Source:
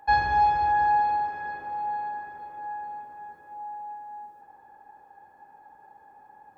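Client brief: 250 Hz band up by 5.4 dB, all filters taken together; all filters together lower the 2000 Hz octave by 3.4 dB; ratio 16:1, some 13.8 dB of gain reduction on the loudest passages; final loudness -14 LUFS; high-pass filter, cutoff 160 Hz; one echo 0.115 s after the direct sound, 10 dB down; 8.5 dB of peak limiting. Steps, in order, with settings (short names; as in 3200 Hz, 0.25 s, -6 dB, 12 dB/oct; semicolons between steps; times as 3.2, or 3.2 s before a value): HPF 160 Hz; bell 250 Hz +8.5 dB; bell 2000 Hz -4.5 dB; compressor 16:1, threshold -32 dBFS; limiter -31.5 dBFS; echo 0.115 s -10 dB; gain +22 dB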